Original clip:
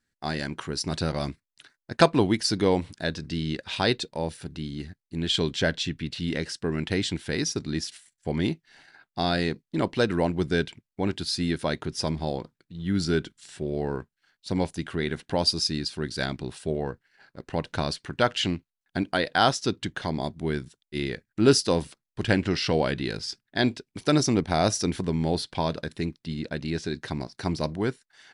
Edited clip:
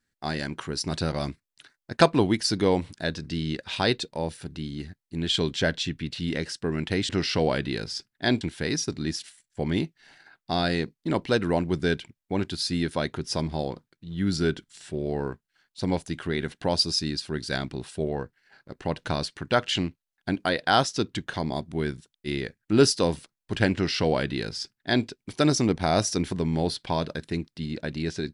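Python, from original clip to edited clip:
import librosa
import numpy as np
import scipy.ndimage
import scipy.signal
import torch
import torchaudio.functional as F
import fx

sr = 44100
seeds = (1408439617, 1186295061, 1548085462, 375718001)

y = fx.edit(x, sr, fx.duplicate(start_s=22.42, length_s=1.32, to_s=7.09), tone=tone)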